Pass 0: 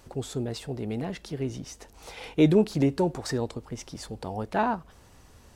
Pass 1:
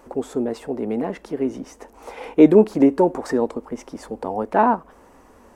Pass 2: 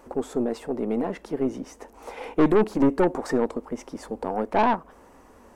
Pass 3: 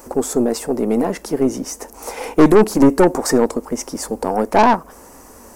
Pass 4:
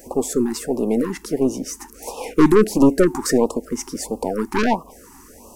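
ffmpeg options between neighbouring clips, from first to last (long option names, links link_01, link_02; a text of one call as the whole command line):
ffmpeg -i in.wav -af "equalizer=frequency=125:width_type=o:width=1:gain=-11,equalizer=frequency=250:width_type=o:width=1:gain=11,equalizer=frequency=500:width_type=o:width=1:gain=8,equalizer=frequency=1000:width_type=o:width=1:gain=9,equalizer=frequency=2000:width_type=o:width=1:gain=4,equalizer=frequency=4000:width_type=o:width=1:gain=-7,volume=-1dB" out.wav
ffmpeg -i in.wav -af "aeval=exprs='(tanh(5.01*val(0)+0.45)-tanh(0.45))/5.01':channel_layout=same" out.wav
ffmpeg -i in.wav -af "aexciter=amount=4.8:drive=3.6:freq=4800,volume=8.5dB" out.wav
ffmpeg -i in.wav -af "afftfilt=real='re*(1-between(b*sr/1024,540*pow(1800/540,0.5+0.5*sin(2*PI*1.5*pts/sr))/1.41,540*pow(1800/540,0.5+0.5*sin(2*PI*1.5*pts/sr))*1.41))':imag='im*(1-between(b*sr/1024,540*pow(1800/540,0.5+0.5*sin(2*PI*1.5*pts/sr))/1.41,540*pow(1800/540,0.5+0.5*sin(2*PI*1.5*pts/sr))*1.41))':win_size=1024:overlap=0.75,volume=-2dB" out.wav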